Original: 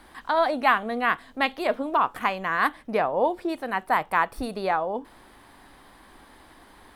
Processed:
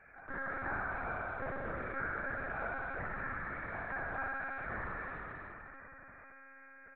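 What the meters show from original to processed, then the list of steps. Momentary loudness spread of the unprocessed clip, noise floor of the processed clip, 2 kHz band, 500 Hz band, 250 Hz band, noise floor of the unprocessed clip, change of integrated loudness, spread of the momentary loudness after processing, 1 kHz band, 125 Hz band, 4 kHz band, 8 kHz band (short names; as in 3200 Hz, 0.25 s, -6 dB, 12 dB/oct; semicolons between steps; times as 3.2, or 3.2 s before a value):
6 LU, -56 dBFS, -9.0 dB, -17.5 dB, -16.5 dB, -53 dBFS, -14.5 dB, 16 LU, -17.0 dB, -2.0 dB, under -30 dB, n/a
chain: minimum comb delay 0.92 ms; low-pass opened by the level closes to 960 Hz, open at -24 dBFS; differentiator; de-hum 52.67 Hz, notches 28; on a send: echo 0.227 s -23.5 dB; on the sum: flange 0.53 Hz, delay 2.9 ms, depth 5.2 ms, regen +57%; inverted band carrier 2600 Hz; spring tank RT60 2.6 s, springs 52 ms, chirp 65 ms, DRR -4 dB; in parallel at -4 dB: backlash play -48.5 dBFS; on the sum: monotone LPC vocoder at 8 kHz 270 Hz; fast leveller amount 50%; gain -3.5 dB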